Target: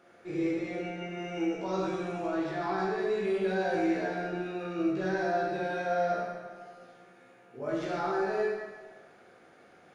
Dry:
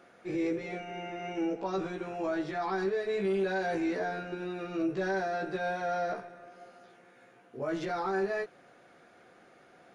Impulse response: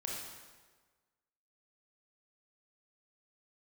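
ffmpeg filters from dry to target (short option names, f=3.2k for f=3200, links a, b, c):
-filter_complex "[0:a]asettb=1/sr,asplit=3[a][b][c];[a]atrim=end=1.134[d];[b]atrim=start=1.13:end=2.22,asetpts=PTS-STARTPTS,afade=t=in:d=0.004:c=qsin,afade=t=out:st=1.086:d=0.004:c=qsin,highshelf=f=5.9k:g=8[e];[c]atrim=start=2.216[f];[d][e]acrossfade=d=0.004:c1=hsin:c2=qsin[g];[g][f]acrossfade=d=0.004:c1=qsin:c2=hsin[h];[1:a]atrim=start_sample=2205[i];[h][i]afir=irnorm=-1:irlink=0"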